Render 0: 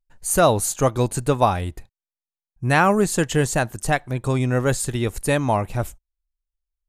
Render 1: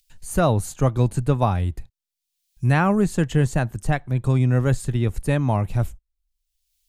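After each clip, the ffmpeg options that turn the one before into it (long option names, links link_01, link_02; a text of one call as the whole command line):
ffmpeg -i in.wav -filter_complex "[0:a]bass=frequency=250:gain=10,treble=frequency=4000:gain=-6,acrossover=split=120|3100[link_01][link_02][link_03];[link_03]acompressor=mode=upward:threshold=-38dB:ratio=2.5[link_04];[link_01][link_02][link_04]amix=inputs=3:normalize=0,volume=-5dB" out.wav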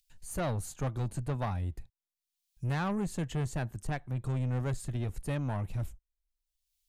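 ffmpeg -i in.wav -af "asoftclip=type=tanh:threshold=-18.5dB,volume=-9dB" out.wav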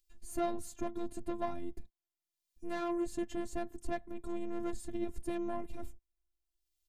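ffmpeg -i in.wav -af "afftfilt=real='hypot(re,im)*cos(PI*b)':imag='0':win_size=512:overlap=0.75,firequalizer=gain_entry='entry(100,0);entry(160,6);entry(1200,-4)':delay=0.05:min_phase=1,volume=2dB" out.wav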